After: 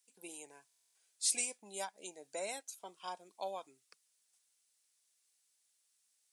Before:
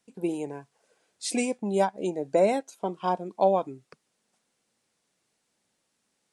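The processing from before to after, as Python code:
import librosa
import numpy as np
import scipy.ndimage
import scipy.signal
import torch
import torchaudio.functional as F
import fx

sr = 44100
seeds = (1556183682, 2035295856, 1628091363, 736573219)

y = np.diff(x, prepend=0.0)
y = fx.buffer_glitch(y, sr, at_s=(0.67,), block=1024, repeats=11)
y = y * librosa.db_to_amplitude(1.5)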